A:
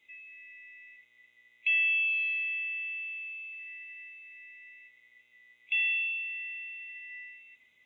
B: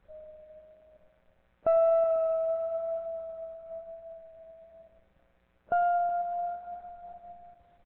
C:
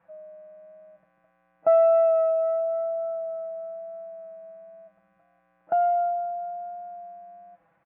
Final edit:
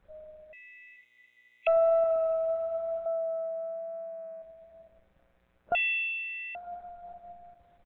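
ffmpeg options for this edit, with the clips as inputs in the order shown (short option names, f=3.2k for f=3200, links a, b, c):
-filter_complex "[0:a]asplit=2[a][b];[1:a]asplit=4[c][d][e][f];[c]atrim=end=0.532[g];[a]atrim=start=0.528:end=1.672[h];[d]atrim=start=1.668:end=3.062[i];[2:a]atrim=start=3.058:end=4.422[j];[e]atrim=start=4.418:end=5.752[k];[b]atrim=start=5.748:end=6.552[l];[f]atrim=start=6.548[m];[g][h]acrossfade=d=0.004:c1=hsin:c2=hsin[n];[n][i]acrossfade=d=0.004:c1=hsin:c2=hsin[o];[o][j]acrossfade=d=0.004:c1=hsin:c2=hsin[p];[p][k]acrossfade=d=0.004:c1=hsin:c2=hsin[q];[q][l]acrossfade=d=0.004:c1=hsin:c2=hsin[r];[r][m]acrossfade=d=0.004:c1=hsin:c2=hsin"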